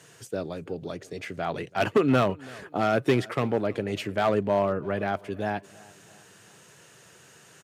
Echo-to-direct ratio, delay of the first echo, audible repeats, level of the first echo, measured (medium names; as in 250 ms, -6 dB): -22.0 dB, 333 ms, 2, -23.0 dB